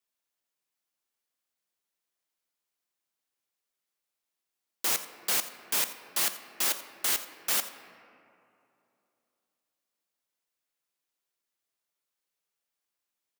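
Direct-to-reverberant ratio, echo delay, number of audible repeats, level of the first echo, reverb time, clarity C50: 8.5 dB, 86 ms, 1, −15.5 dB, 2.8 s, 10.0 dB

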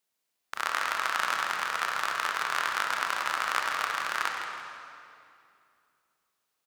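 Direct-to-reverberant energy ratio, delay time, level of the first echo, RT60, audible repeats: 0.5 dB, 162 ms, −9.5 dB, 2.5 s, 2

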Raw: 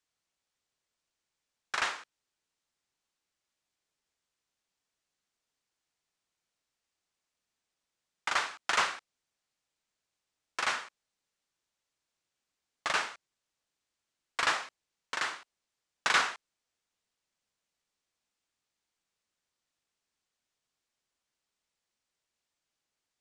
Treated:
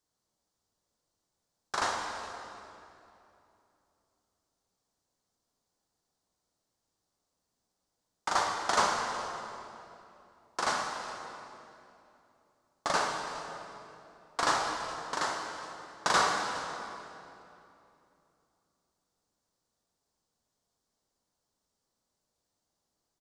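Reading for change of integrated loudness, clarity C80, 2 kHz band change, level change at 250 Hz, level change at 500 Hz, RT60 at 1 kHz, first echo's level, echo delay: −0.5 dB, 3.5 dB, −2.0 dB, +9.5 dB, +8.5 dB, 2.7 s, −18.0 dB, 413 ms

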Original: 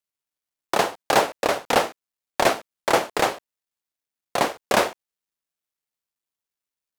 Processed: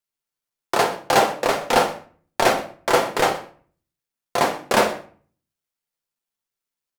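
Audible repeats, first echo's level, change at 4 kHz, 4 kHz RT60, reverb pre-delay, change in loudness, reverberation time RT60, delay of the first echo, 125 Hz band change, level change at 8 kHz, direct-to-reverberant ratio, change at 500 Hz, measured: 1, −19.0 dB, +1.5 dB, 0.35 s, 6 ms, +2.0 dB, 0.45 s, 123 ms, +3.5 dB, +1.5 dB, 2.5 dB, +2.5 dB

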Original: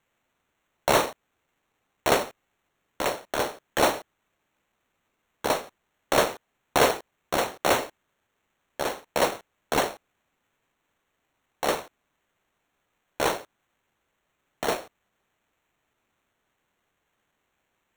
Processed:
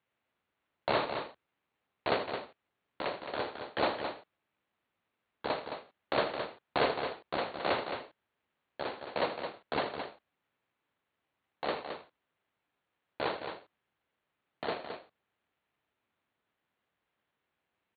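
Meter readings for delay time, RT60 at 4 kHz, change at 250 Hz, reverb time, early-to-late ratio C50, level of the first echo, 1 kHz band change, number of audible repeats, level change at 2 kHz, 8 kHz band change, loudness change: 80 ms, no reverb audible, −7.5 dB, no reverb audible, no reverb audible, −13.0 dB, −7.5 dB, 2, −7.5 dB, below −40 dB, −9.0 dB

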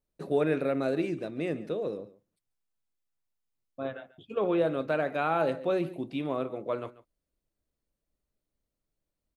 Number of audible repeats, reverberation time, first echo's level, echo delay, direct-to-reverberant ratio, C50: 1, no reverb audible, −18.0 dB, 140 ms, no reverb audible, no reverb audible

